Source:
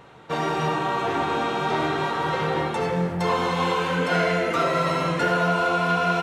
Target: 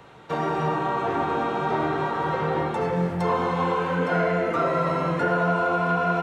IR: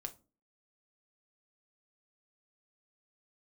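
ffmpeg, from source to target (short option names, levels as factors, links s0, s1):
-filter_complex "[0:a]acrossover=split=240|440|1800[s0][s1][s2][s3];[s3]acompressor=threshold=0.00562:ratio=6[s4];[s0][s1][s2][s4]amix=inputs=4:normalize=0"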